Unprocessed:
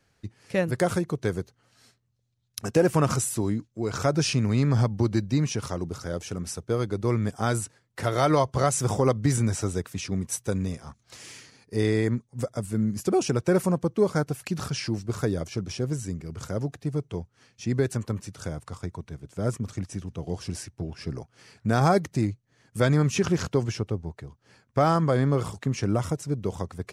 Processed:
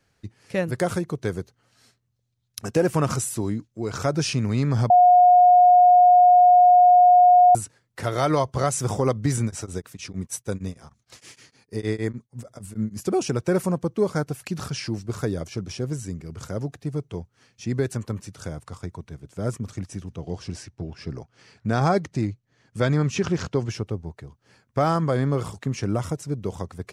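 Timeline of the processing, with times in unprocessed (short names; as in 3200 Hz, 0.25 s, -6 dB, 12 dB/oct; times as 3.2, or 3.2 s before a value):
4.9–7.55 bleep 719 Hz -10 dBFS
9.44–13.02 beating tremolo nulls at 6.5 Hz
20.16–23.7 LPF 6800 Hz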